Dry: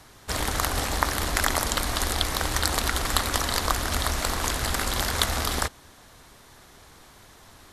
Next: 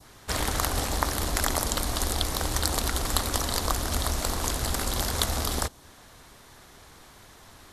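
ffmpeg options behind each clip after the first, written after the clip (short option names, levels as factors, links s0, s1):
-af "adynamicequalizer=threshold=0.00891:dfrequency=1900:dqfactor=0.73:tfrequency=1900:tqfactor=0.73:attack=5:release=100:ratio=0.375:range=3.5:mode=cutabove:tftype=bell"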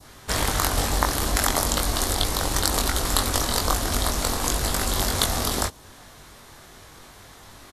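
-filter_complex "[0:a]asplit=2[s0][s1];[s1]adelay=21,volume=0.631[s2];[s0][s2]amix=inputs=2:normalize=0,volume=1.41"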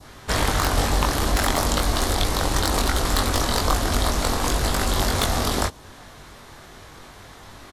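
-af "aeval=exprs='0.891*sin(PI/2*2.51*val(0)/0.891)':c=same,highshelf=f=6100:g=-8.5,volume=0.398"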